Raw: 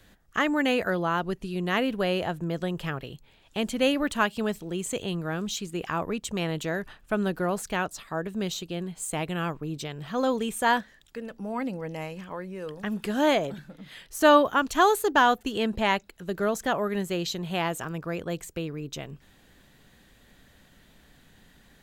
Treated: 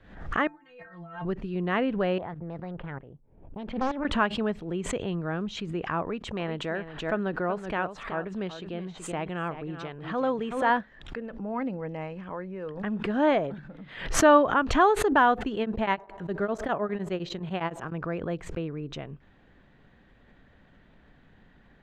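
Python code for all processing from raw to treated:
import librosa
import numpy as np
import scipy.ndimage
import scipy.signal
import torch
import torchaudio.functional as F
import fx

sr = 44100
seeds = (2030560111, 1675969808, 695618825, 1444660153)

y = fx.chain(x, sr, fx.peak_eq(hz=440.0, db=-12.0, octaves=1.5),
    fx.over_compress(threshold_db=-35.0, ratio=-0.5),
    fx.stiff_resonator(f0_hz=160.0, decay_s=0.32, stiffness=0.008), at=(0.47, 1.25))
y = fx.chain(y, sr, fx.env_lowpass(base_hz=360.0, full_db=-20.5),
    fx.level_steps(step_db=12),
    fx.doppler_dist(depth_ms=0.79), at=(2.18, 4.05))
y = fx.chain(y, sr, fx.low_shelf(hz=270.0, db=-6.0),
    fx.echo_single(ms=377, db=-11.5), at=(6.02, 10.7))
y = fx.chain(y, sr, fx.high_shelf(hz=5600.0, db=6.0),
    fx.echo_wet_bandpass(ms=70, feedback_pct=65, hz=550.0, wet_db=-21.5),
    fx.tremolo_abs(hz=9.8), at=(15.51, 17.92))
y = scipy.signal.sosfilt(scipy.signal.butter(2, 2000.0, 'lowpass', fs=sr, output='sos'), y)
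y = fx.pre_swell(y, sr, db_per_s=90.0)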